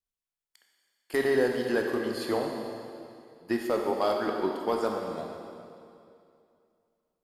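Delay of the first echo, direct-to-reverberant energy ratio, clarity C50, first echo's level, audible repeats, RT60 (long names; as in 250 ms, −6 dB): no echo audible, 1.0 dB, 2.5 dB, no echo audible, no echo audible, 2.5 s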